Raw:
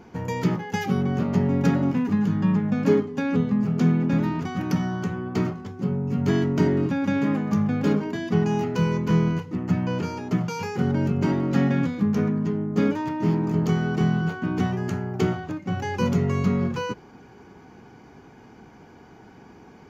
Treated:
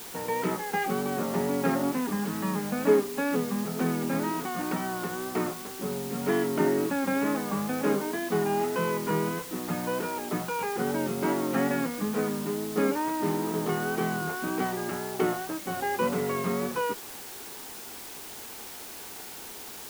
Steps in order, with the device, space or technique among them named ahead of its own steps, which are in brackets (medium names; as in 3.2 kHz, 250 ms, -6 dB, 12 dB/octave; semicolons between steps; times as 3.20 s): wax cylinder (band-pass 380–2100 Hz; wow and flutter; white noise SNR 13 dB); trim +2 dB